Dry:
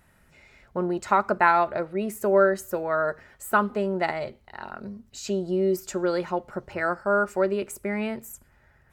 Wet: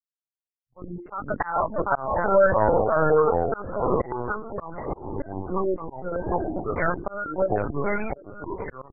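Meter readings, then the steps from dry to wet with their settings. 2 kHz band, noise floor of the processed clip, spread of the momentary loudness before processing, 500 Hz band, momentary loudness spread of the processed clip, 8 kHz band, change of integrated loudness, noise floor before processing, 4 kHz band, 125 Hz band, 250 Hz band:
−2.5 dB, below −85 dBFS, 17 LU, +1.5 dB, 15 LU, below −40 dB, 0.0 dB, −60 dBFS, below −40 dB, +4.5 dB, −1.5 dB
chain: sub-octave generator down 1 octave, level −5 dB
de-essing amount 40%
dead-zone distortion −34.5 dBFS
parametric band 390 Hz −5 dB 0.79 octaves
single-tap delay 751 ms −10 dB
delay with pitch and tempo change per echo 144 ms, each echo −4 semitones, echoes 3
gate on every frequency bin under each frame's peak −15 dB strong
single-tap delay 1,183 ms −18.5 dB
brick-wall band-pass 120–2,800 Hz
mains-hum notches 50/100/150/200/250/300/350 Hz
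linear-prediction vocoder at 8 kHz pitch kept
volume swells 379 ms
level +4.5 dB

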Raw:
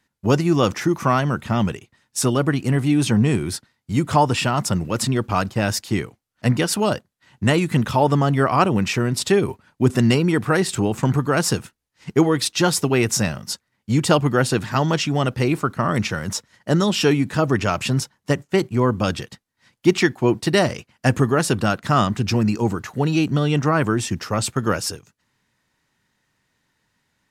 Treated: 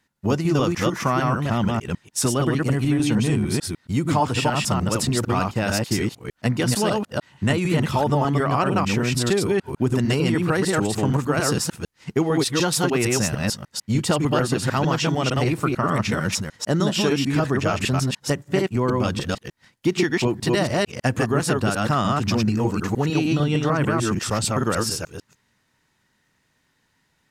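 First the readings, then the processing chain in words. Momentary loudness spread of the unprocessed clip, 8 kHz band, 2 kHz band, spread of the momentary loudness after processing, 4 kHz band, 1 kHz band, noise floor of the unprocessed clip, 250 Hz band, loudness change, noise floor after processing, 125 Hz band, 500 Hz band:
7 LU, −0.5 dB, −1.5 dB, 5 LU, −1.0 dB, −2.0 dB, −74 dBFS, −1.5 dB, −2.0 dB, −68 dBFS, −1.5 dB, −2.0 dB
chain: delay that plays each chunk backwards 150 ms, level −1.5 dB
downward compressor 3 to 1, threshold −18 dBFS, peak gain reduction 8 dB

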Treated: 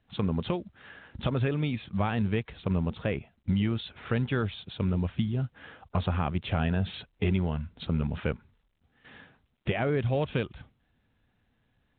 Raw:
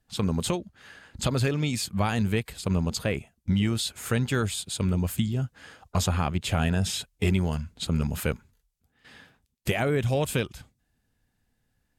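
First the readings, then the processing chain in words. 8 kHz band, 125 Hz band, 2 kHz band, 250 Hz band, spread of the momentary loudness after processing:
below −40 dB, −2.5 dB, −4.0 dB, −2.0 dB, 7 LU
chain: high-pass filter 41 Hz 6 dB per octave
in parallel at −2 dB: downward compressor 16 to 1, threshold −33 dBFS, peak gain reduction 14.5 dB
on the sum: high-shelf EQ 2,600 Hz −6 dB
level −3.5 dB
mu-law 64 kbit/s 8,000 Hz

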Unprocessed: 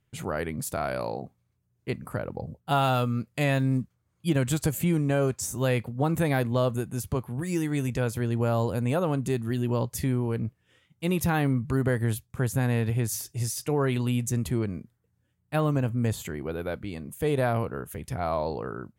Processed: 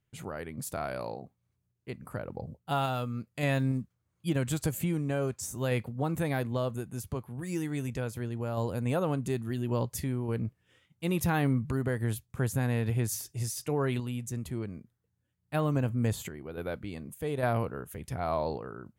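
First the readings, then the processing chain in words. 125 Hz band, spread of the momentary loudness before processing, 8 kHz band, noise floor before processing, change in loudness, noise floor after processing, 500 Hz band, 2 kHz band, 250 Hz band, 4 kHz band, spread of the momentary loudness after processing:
−4.5 dB, 9 LU, −4.5 dB, −73 dBFS, −4.5 dB, −79 dBFS, −5.0 dB, −4.5 dB, −4.5 dB, −5.0 dB, 11 LU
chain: sample-and-hold tremolo
level −2 dB

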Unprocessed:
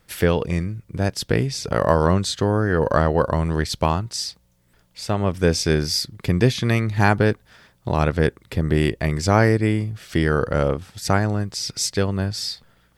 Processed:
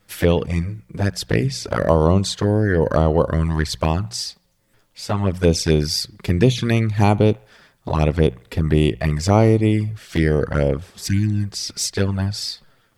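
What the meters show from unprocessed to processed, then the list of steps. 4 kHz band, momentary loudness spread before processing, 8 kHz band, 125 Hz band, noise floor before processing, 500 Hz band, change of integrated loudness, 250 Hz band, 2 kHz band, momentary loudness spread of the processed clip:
+0.5 dB, 8 LU, +0.5 dB, +2.5 dB, −61 dBFS, +1.5 dB, +1.5 dB, +2.5 dB, −3.0 dB, 9 LU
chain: flanger swept by the level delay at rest 10.2 ms, full sweep at −14 dBFS
mains-hum notches 60/120/180 Hz
healed spectral selection 0:10.85–0:11.42, 360–1,500 Hz
delay with a band-pass on its return 73 ms, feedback 48%, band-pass 1,300 Hz, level −22 dB
level +3.5 dB

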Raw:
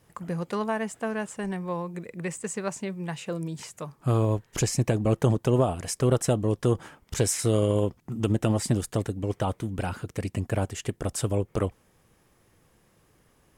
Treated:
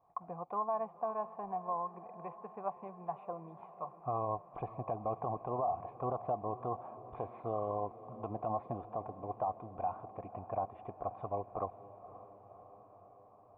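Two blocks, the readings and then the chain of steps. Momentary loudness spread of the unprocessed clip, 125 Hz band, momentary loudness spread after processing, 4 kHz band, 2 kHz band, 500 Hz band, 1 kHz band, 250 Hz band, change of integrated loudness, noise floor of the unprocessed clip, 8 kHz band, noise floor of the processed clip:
10 LU, −20.5 dB, 16 LU, below −40 dB, below −25 dB, −10.5 dB, −0.5 dB, −19.0 dB, −12.0 dB, −64 dBFS, below −40 dB, −60 dBFS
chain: formant resonators in series a
brickwall limiter −33.5 dBFS, peak gain reduction 8.5 dB
feedback delay with all-pass diffusion 540 ms, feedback 68%, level −15.5 dB
level +8 dB

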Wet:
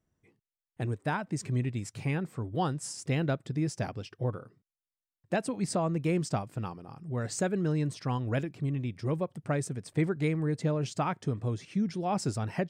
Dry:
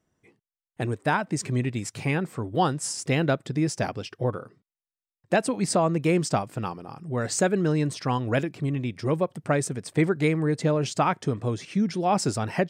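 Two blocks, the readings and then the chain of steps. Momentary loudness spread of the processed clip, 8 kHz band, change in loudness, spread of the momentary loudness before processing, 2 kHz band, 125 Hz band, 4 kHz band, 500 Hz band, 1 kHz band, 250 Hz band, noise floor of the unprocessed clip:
6 LU, −8.5 dB, −6.0 dB, 7 LU, −8.5 dB, −3.5 dB, −8.5 dB, −7.5 dB, −8.0 dB, −5.5 dB, below −85 dBFS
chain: low-shelf EQ 140 Hz +10.5 dB
level −8.5 dB

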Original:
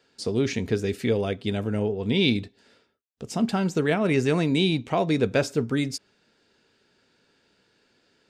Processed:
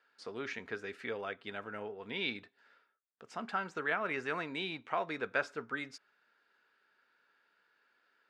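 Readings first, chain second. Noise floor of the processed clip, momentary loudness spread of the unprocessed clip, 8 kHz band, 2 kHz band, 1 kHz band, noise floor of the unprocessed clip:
−76 dBFS, 6 LU, −20.5 dB, −4.5 dB, −6.0 dB, −67 dBFS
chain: resonant band-pass 1,400 Hz, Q 2.1

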